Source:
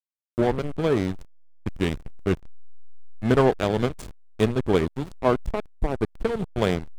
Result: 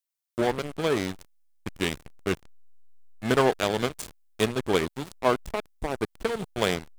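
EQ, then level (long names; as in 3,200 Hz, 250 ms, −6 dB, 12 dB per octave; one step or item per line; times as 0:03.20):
spectral tilt +2.5 dB per octave
0.0 dB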